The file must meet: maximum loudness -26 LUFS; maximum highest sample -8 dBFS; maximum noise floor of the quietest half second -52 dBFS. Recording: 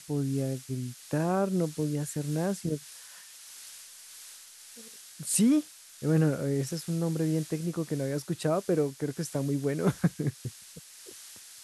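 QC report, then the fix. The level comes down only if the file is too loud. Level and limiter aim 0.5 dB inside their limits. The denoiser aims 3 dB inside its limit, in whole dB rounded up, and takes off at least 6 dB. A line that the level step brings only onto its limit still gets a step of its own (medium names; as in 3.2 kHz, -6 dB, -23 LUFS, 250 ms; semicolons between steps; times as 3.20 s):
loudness -30.0 LUFS: pass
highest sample -13.0 dBFS: pass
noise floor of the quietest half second -50 dBFS: fail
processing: noise reduction 6 dB, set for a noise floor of -50 dBFS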